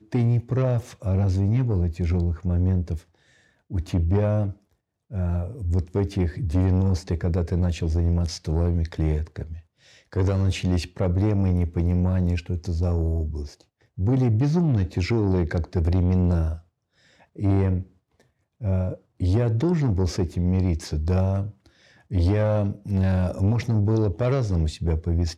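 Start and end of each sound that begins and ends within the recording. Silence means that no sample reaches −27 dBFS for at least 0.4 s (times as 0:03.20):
0:03.73–0:04.51
0:05.14–0:09.52
0:10.13–0:13.45
0:13.99–0:16.54
0:17.39–0:17.81
0:18.64–0:21.47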